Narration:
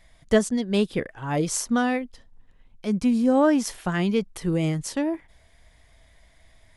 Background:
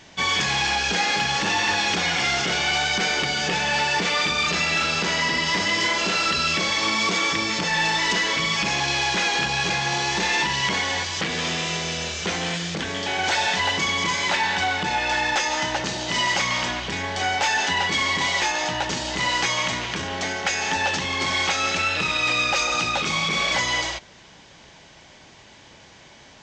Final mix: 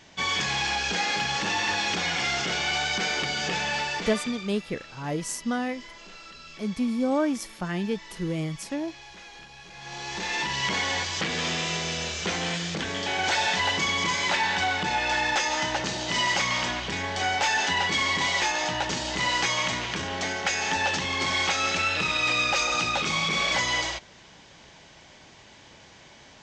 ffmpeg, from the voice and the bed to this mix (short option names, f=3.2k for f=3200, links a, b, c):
-filter_complex "[0:a]adelay=3750,volume=-5.5dB[a];[1:a]volume=16.5dB,afade=t=out:st=3.6:d=0.9:silence=0.112202,afade=t=in:st=9.72:d=1.14:silence=0.0891251[b];[a][b]amix=inputs=2:normalize=0"